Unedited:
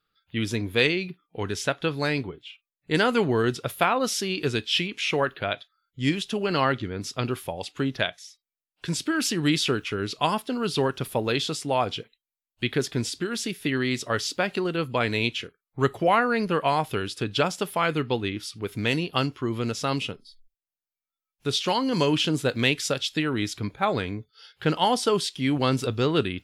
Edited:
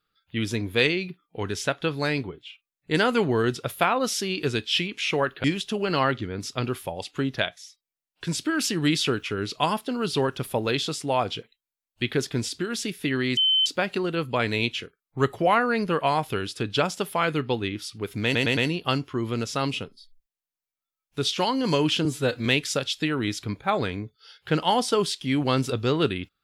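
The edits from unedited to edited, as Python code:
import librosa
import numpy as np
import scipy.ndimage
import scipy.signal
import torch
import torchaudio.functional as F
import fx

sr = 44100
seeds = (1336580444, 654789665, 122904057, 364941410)

y = fx.edit(x, sr, fx.cut(start_s=5.44, length_s=0.61),
    fx.bleep(start_s=13.98, length_s=0.29, hz=3070.0, db=-17.5),
    fx.stutter(start_s=18.85, slice_s=0.11, count=4),
    fx.stretch_span(start_s=22.33, length_s=0.27, factor=1.5), tone=tone)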